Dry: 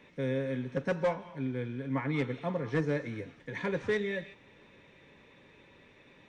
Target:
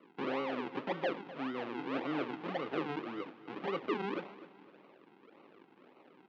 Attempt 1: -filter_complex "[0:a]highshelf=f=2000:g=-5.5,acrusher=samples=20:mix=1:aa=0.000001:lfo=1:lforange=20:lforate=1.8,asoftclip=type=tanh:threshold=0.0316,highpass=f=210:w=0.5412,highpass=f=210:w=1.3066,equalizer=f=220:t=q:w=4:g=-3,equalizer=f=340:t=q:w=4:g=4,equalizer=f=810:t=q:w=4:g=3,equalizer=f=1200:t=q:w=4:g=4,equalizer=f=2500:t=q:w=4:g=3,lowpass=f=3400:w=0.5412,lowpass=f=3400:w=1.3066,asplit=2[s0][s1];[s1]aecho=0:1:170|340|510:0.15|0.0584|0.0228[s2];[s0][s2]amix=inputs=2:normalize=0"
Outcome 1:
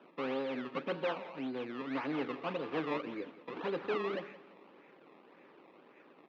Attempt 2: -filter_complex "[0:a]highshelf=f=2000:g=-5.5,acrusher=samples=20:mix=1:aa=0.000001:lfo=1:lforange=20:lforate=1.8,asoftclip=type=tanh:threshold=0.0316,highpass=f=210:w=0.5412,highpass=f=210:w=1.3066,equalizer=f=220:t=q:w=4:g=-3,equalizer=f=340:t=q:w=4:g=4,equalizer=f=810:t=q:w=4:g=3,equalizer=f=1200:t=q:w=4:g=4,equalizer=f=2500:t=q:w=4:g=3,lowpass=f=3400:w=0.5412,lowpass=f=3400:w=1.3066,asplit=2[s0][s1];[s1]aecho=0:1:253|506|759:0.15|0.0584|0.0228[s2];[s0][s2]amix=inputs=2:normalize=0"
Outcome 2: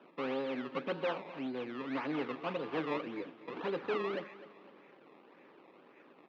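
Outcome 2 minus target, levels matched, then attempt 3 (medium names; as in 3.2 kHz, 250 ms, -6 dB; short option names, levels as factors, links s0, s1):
decimation with a swept rate: distortion -10 dB
-filter_complex "[0:a]highshelf=f=2000:g=-5.5,acrusher=samples=51:mix=1:aa=0.000001:lfo=1:lforange=51:lforate=1.8,asoftclip=type=tanh:threshold=0.0316,highpass=f=210:w=0.5412,highpass=f=210:w=1.3066,equalizer=f=220:t=q:w=4:g=-3,equalizer=f=340:t=q:w=4:g=4,equalizer=f=810:t=q:w=4:g=3,equalizer=f=1200:t=q:w=4:g=4,equalizer=f=2500:t=q:w=4:g=3,lowpass=f=3400:w=0.5412,lowpass=f=3400:w=1.3066,asplit=2[s0][s1];[s1]aecho=0:1:253|506|759:0.15|0.0584|0.0228[s2];[s0][s2]amix=inputs=2:normalize=0"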